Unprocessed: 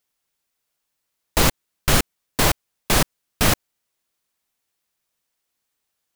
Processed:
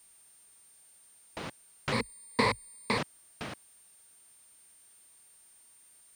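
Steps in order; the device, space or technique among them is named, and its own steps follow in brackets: medium wave at night (band-pass 130–3600 Hz; compression, threshold -21 dBFS, peak gain reduction 5.5 dB; tremolo 0.41 Hz, depth 77%; whistle 9 kHz -53 dBFS; white noise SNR 25 dB); 1.92–2.98 s: rippled EQ curve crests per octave 0.94, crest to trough 16 dB; trim -4.5 dB

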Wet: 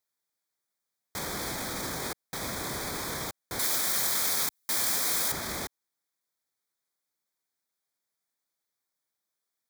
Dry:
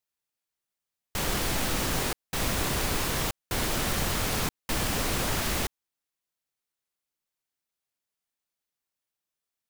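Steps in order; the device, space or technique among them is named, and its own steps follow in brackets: PA system with an anti-feedback notch (high-pass 160 Hz 6 dB/octave; Butterworth band-stop 2.8 kHz, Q 3.3; peak limiter -27.5 dBFS, peak gain reduction 9.5 dB); 3.59–5.32 s: tilt EQ +3 dB/octave; trim +2.5 dB

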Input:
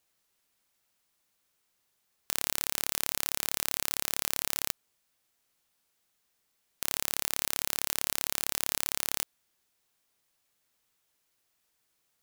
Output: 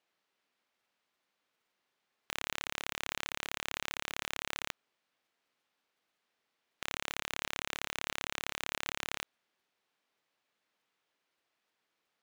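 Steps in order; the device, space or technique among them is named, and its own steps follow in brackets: early digital voice recorder (band-pass 210–3400 Hz; block-companded coder 3-bit)

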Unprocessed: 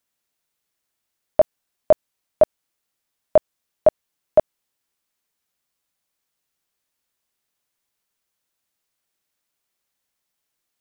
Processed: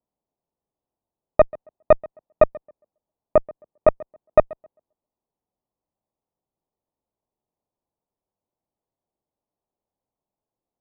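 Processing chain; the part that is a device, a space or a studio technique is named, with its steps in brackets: 2.43–3.88 s: dynamic bell 980 Hz, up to -5 dB, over -28 dBFS, Q 0.83; steep low-pass 940 Hz 36 dB/octave; rockabilly slapback (valve stage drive 8 dB, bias 0.55; tape echo 134 ms, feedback 22%, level -20.5 dB, low-pass 1.4 kHz); trim +4.5 dB

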